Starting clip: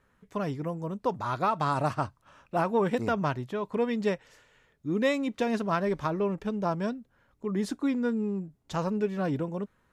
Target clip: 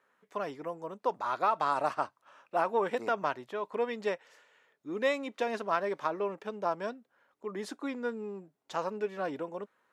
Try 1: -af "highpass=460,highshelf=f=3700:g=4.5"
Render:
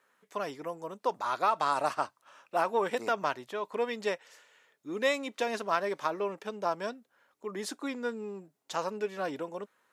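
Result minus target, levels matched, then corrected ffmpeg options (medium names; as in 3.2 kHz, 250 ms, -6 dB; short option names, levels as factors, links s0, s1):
8 kHz band +7.5 dB
-af "highpass=460,highshelf=f=3700:g=-6"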